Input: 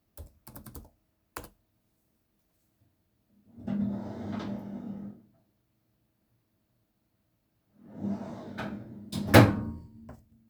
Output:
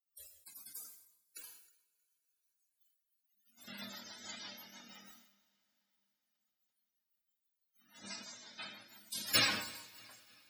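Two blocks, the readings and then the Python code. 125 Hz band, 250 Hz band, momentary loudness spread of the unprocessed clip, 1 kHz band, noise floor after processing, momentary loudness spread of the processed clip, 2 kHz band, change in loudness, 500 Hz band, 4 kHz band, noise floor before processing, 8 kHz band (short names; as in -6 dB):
-27.5 dB, -23.0 dB, 26 LU, -14.5 dB, under -85 dBFS, 23 LU, -6.5 dB, -9.5 dB, -21.0 dB, +2.5 dB, -76 dBFS, n/a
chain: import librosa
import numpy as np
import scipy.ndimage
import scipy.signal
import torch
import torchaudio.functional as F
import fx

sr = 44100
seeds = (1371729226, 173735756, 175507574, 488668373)

p1 = fx.envelope_flatten(x, sr, power=0.3)
p2 = fx.rotary(p1, sr, hz=6.0)
p3 = fx.spec_topn(p2, sr, count=64)
p4 = p3 + fx.echo_feedback(p3, sr, ms=315, feedback_pct=43, wet_db=-22.0, dry=0)
p5 = fx.noise_reduce_blind(p4, sr, reduce_db=15)
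p6 = F.preemphasis(torch.from_numpy(p5), 0.97).numpy()
p7 = fx.rev_double_slope(p6, sr, seeds[0], early_s=0.5, late_s=4.5, knee_db=-17, drr_db=13.0)
p8 = fx.sustainer(p7, sr, db_per_s=72.0)
y = p8 * librosa.db_to_amplitude(6.5)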